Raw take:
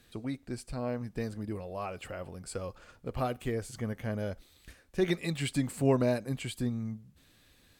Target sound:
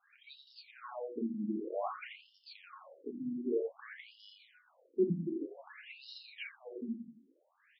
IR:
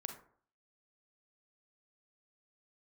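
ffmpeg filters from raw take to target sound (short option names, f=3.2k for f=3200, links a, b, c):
-filter_complex "[0:a]aecho=1:1:86|172|258|344|430:0.562|0.236|0.0992|0.0417|0.0175[a];[1:a]atrim=start_sample=2205,afade=t=out:st=0.15:d=0.01,atrim=end_sample=7056,asetrate=66150,aresample=44100[b];[a][b]afir=irnorm=-1:irlink=0,afftfilt=real='re*between(b*sr/1024,230*pow(4000/230,0.5+0.5*sin(2*PI*0.53*pts/sr))/1.41,230*pow(4000/230,0.5+0.5*sin(2*PI*0.53*pts/sr))*1.41)':imag='im*between(b*sr/1024,230*pow(4000/230,0.5+0.5*sin(2*PI*0.53*pts/sr))/1.41,230*pow(4000/230,0.5+0.5*sin(2*PI*0.53*pts/sr))*1.41)':win_size=1024:overlap=0.75,volume=7.5dB"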